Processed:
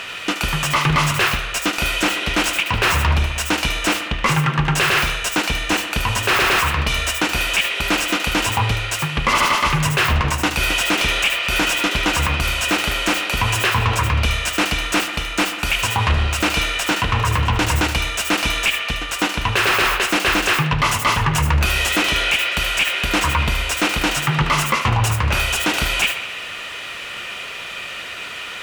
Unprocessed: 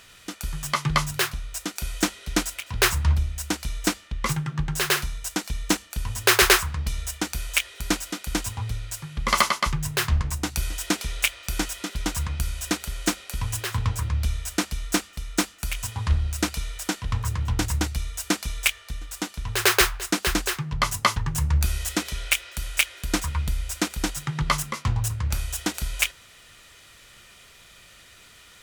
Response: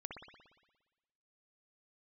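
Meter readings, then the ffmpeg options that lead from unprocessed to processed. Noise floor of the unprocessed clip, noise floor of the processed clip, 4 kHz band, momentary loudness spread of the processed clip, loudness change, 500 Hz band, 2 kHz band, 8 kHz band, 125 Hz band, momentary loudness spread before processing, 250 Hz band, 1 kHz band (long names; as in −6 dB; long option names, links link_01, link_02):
−51 dBFS, −31 dBFS, +9.0 dB, 5 LU, +7.5 dB, +7.0 dB, +10.0 dB, +3.0 dB, +6.0 dB, 9 LU, +6.0 dB, +10.0 dB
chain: -filter_complex "[0:a]equalizer=frequency=2700:width=3.1:gain=8.5,asplit=2[link_01][link_02];[link_02]highpass=frequency=720:poles=1,volume=26dB,asoftclip=type=tanh:threshold=-2dB[link_03];[link_01][link_03]amix=inputs=2:normalize=0,lowpass=frequency=1100:poles=1,volume=-6dB,asplit=2[link_04][link_05];[link_05]aemphasis=mode=production:type=bsi[link_06];[1:a]atrim=start_sample=2205,adelay=75[link_07];[link_06][link_07]afir=irnorm=-1:irlink=0,volume=-10.5dB[link_08];[link_04][link_08]amix=inputs=2:normalize=0,alimiter=level_in=13dB:limit=-1dB:release=50:level=0:latency=1,volume=-7.5dB"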